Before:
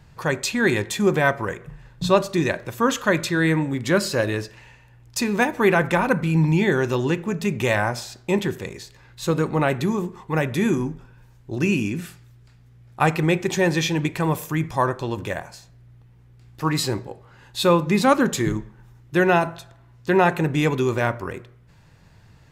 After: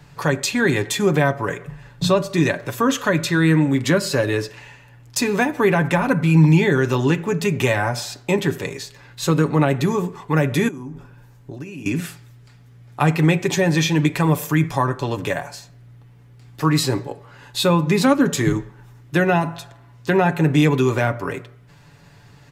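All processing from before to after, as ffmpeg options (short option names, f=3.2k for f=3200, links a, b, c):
-filter_complex "[0:a]asettb=1/sr,asplit=3[a][b][c];[a]atrim=end=10.684[d];[b]atrim=start=10.68:end=11.86,asetpts=PTS-STARTPTS,afade=t=in:d=0.004:c=qsin,afade=t=out:st=1.176:d=0.004:c=qsin,equalizer=f=3.9k:w=0.43:g=-4,acompressor=threshold=-34dB:ratio=16:attack=3.2:release=140:knee=1:detection=peak[e];[c]atrim=start=11.856[f];[d][e]acrossfade=d=0.004:c1=hsin:c2=qsin[g];[g][f]acrossfade=d=0.004:c1=qsin:c2=hsin,lowshelf=f=100:g=-9,aecho=1:1:7:0.53,acrossover=split=310[h][i];[i]acompressor=threshold=-26dB:ratio=2.5[j];[h][j]amix=inputs=2:normalize=0,volume=5.5dB"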